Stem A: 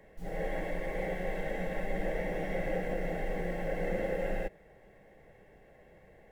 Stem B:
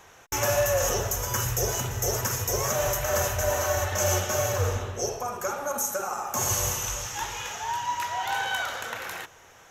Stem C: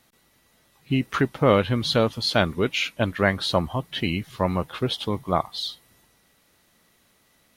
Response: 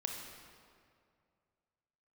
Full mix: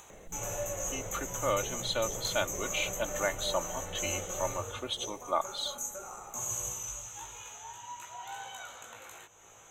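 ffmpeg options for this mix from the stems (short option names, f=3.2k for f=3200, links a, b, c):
-filter_complex "[0:a]acompressor=threshold=-46dB:ratio=2,asoftclip=type=tanh:threshold=-37dB,adelay=100,volume=0.5dB[a];[1:a]flanger=delay=16.5:depth=2.5:speed=0.6,volume=-11.5dB[b];[2:a]highpass=540,aecho=1:1:3.4:0.65,dynaudnorm=f=940:g=3:m=11.5dB,volume=-13.5dB[c];[a][b][c]amix=inputs=3:normalize=0,superequalizer=11b=0.562:14b=0.355:15b=2.51,acompressor=mode=upward:threshold=-44dB:ratio=2.5"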